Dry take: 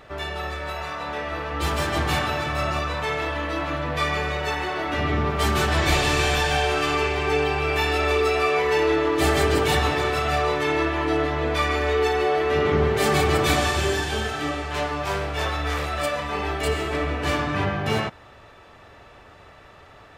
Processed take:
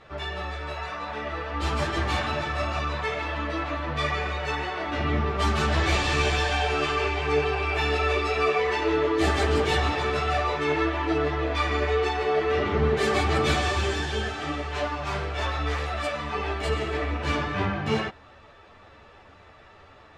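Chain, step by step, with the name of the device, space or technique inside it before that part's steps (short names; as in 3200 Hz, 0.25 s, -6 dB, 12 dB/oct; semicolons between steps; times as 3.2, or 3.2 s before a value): string-machine ensemble chorus (ensemble effect; LPF 6700 Hz 12 dB/oct)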